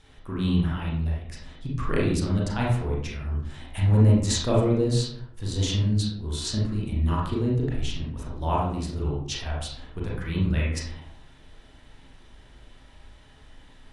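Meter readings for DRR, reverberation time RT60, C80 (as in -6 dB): -4.5 dB, 0.70 s, 6.0 dB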